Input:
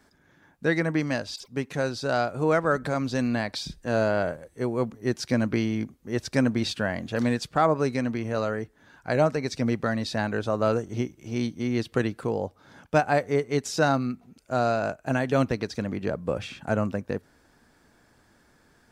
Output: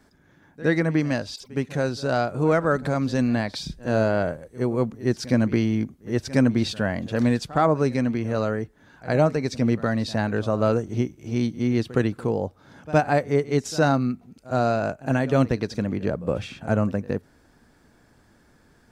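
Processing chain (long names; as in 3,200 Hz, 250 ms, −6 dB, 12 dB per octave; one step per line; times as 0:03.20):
low-shelf EQ 420 Hz +5.5 dB
backwards echo 65 ms −18.5 dB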